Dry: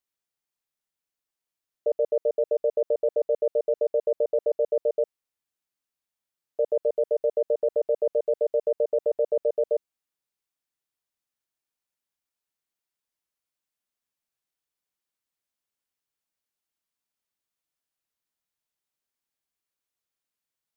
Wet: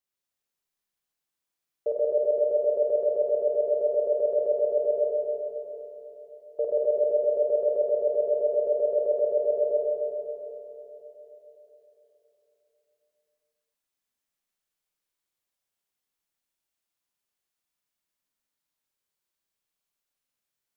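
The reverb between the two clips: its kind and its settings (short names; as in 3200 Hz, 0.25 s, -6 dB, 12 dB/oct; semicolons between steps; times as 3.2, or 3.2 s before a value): Schroeder reverb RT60 3.8 s, combs from 31 ms, DRR -4 dB; gain -3 dB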